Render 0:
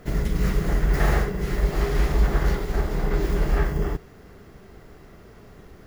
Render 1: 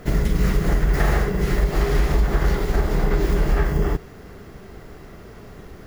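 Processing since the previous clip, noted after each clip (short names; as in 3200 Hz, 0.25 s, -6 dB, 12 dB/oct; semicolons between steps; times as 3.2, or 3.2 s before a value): compressor, threshold -20 dBFS, peak gain reduction 7 dB; gain +6 dB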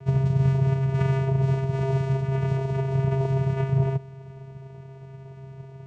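vocoder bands 4, square 134 Hz; gain +2.5 dB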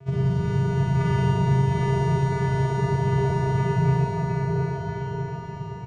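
bouncing-ball echo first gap 0.71 s, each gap 0.85×, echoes 5; Schroeder reverb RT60 2.4 s, DRR -7 dB; gain -3.5 dB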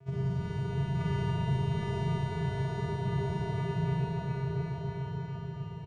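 feedback echo 0.28 s, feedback 55%, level -6 dB; gain -9 dB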